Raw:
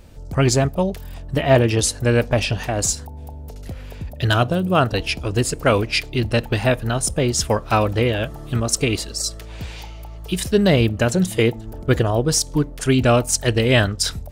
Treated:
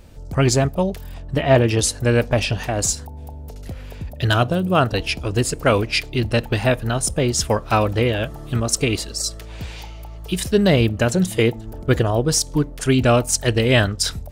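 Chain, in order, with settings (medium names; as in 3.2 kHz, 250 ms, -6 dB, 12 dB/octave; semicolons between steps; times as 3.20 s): 1.13–1.66 s: treble shelf 9 kHz -9 dB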